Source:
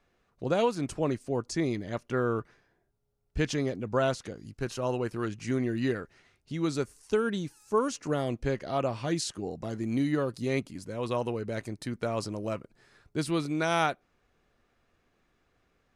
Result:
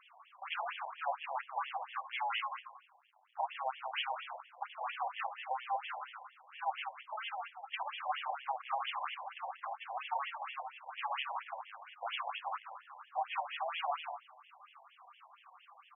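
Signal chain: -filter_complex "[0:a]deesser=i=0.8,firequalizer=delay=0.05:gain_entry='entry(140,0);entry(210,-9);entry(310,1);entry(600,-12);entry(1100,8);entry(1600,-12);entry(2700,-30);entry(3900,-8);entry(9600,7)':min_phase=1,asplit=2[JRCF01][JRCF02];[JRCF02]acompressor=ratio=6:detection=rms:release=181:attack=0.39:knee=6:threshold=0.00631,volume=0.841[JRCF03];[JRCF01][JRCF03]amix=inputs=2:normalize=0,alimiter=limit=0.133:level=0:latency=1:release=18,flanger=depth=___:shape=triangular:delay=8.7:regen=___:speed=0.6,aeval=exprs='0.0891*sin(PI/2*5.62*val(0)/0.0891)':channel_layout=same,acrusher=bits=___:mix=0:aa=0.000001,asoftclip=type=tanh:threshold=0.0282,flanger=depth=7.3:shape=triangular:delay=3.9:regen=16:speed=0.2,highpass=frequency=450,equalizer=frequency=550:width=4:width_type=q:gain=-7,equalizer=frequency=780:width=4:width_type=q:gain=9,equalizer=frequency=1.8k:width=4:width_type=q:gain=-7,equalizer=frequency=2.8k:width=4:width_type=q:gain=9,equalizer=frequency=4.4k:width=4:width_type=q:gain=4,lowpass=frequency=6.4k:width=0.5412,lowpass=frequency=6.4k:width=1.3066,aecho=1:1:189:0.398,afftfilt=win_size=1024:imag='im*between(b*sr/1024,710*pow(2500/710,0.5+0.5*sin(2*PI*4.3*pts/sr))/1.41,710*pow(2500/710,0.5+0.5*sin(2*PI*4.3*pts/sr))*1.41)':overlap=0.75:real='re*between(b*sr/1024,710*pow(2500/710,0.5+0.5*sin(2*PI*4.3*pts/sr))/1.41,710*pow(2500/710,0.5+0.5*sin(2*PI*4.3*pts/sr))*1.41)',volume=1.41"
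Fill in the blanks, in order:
7.9, -83, 8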